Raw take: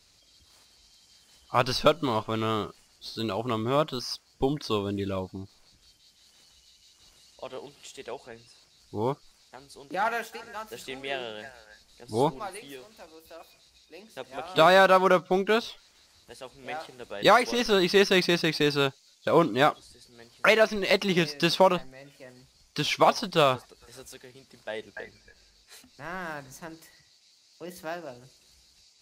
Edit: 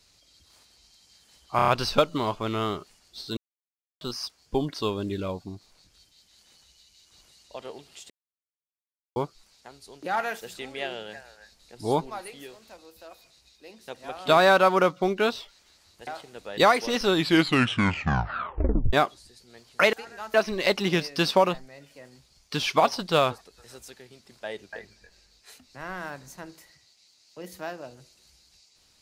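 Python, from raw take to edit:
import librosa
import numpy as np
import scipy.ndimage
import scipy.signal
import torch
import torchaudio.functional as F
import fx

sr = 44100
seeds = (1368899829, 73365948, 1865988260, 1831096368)

y = fx.edit(x, sr, fx.stutter(start_s=1.56, slice_s=0.03, count=5),
    fx.silence(start_s=3.25, length_s=0.64),
    fx.silence(start_s=7.98, length_s=1.06),
    fx.move(start_s=10.29, length_s=0.41, to_s=20.58),
    fx.cut(start_s=16.36, length_s=0.36),
    fx.tape_stop(start_s=17.69, length_s=1.89), tone=tone)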